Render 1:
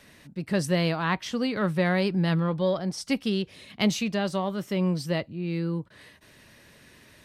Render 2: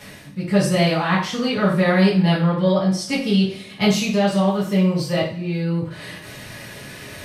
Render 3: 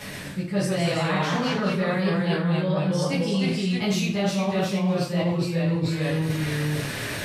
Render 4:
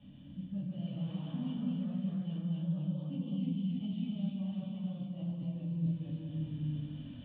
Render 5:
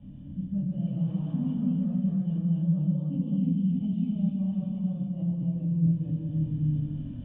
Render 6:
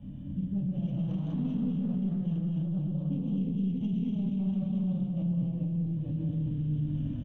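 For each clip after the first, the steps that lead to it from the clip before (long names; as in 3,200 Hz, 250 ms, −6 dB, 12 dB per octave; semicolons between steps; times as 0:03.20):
reversed playback; upward compression, threshold −33 dBFS; reversed playback; coupled-rooms reverb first 0.45 s, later 2.2 s, from −26 dB, DRR −8.5 dB; level −1.5 dB
delay with pitch and tempo change per echo 121 ms, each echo −1 semitone, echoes 2; reversed playback; downward compressor 6 to 1, threshold −25 dBFS, peak gain reduction 15 dB; reversed playback; level +3.5 dB
formant resonators in series i; phaser with its sweep stopped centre 920 Hz, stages 4; reverb whose tail is shaped and stops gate 320 ms rising, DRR 0 dB; level −2 dB
low-pass filter 2,400 Hz 6 dB per octave; spectral tilt −3 dB per octave; level +1.5 dB
stylus tracing distortion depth 0.22 ms; brickwall limiter −27.5 dBFS, peak gain reduction 11 dB; single-tap delay 205 ms −9.5 dB; level +2.5 dB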